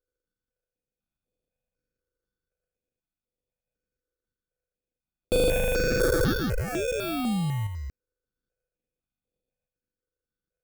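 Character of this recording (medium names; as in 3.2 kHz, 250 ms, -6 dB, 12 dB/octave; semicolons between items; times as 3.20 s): a buzz of ramps at a fixed pitch in blocks of 8 samples; random-step tremolo 3 Hz; aliases and images of a low sample rate 1 kHz, jitter 0%; notches that jump at a steady rate 4 Hz 730–5900 Hz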